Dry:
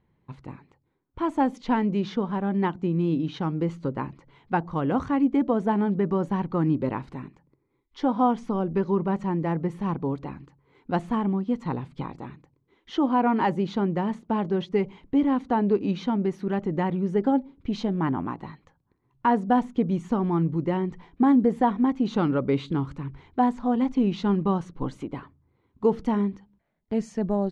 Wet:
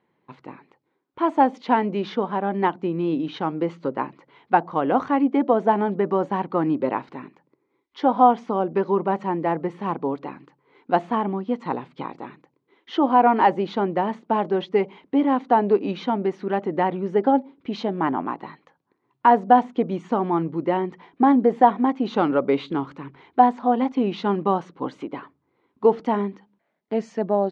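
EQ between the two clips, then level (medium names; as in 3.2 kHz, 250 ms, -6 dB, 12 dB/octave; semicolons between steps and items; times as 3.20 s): dynamic bell 710 Hz, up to +5 dB, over -37 dBFS, Q 2.2; band-pass 300–4200 Hz; +5.0 dB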